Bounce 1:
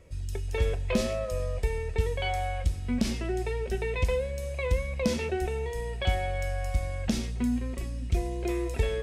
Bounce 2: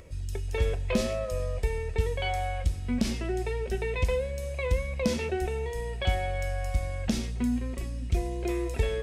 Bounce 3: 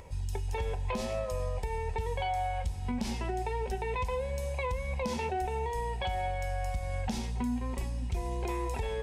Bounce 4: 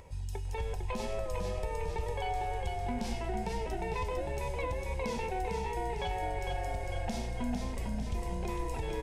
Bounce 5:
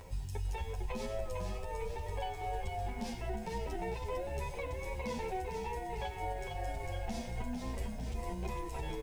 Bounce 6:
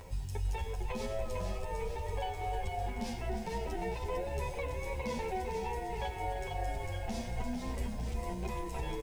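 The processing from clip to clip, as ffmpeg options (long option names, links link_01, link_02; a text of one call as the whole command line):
ffmpeg -i in.wav -af "acompressor=mode=upward:threshold=-44dB:ratio=2.5" out.wav
ffmpeg -i in.wav -af "superequalizer=6b=0.562:9b=3.98,alimiter=limit=-24dB:level=0:latency=1:release=190" out.wav
ffmpeg -i in.wav -filter_complex "[0:a]asplit=9[link_01][link_02][link_03][link_04][link_05][link_06][link_07][link_08][link_09];[link_02]adelay=452,afreqshift=-31,volume=-4dB[link_10];[link_03]adelay=904,afreqshift=-62,volume=-9dB[link_11];[link_04]adelay=1356,afreqshift=-93,volume=-14.1dB[link_12];[link_05]adelay=1808,afreqshift=-124,volume=-19.1dB[link_13];[link_06]adelay=2260,afreqshift=-155,volume=-24.1dB[link_14];[link_07]adelay=2712,afreqshift=-186,volume=-29.2dB[link_15];[link_08]adelay=3164,afreqshift=-217,volume=-34.2dB[link_16];[link_09]adelay=3616,afreqshift=-248,volume=-39.3dB[link_17];[link_01][link_10][link_11][link_12][link_13][link_14][link_15][link_16][link_17]amix=inputs=9:normalize=0,volume=-3.5dB" out.wav
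ffmpeg -i in.wav -filter_complex "[0:a]alimiter=level_in=7dB:limit=-24dB:level=0:latency=1:release=369,volume=-7dB,acrusher=bits=10:mix=0:aa=0.000001,asplit=2[link_01][link_02];[link_02]adelay=9.5,afreqshift=2.9[link_03];[link_01][link_03]amix=inputs=2:normalize=1,volume=5dB" out.wav
ffmpeg -i in.wav -af "aecho=1:1:305:0.282,volume=1.5dB" out.wav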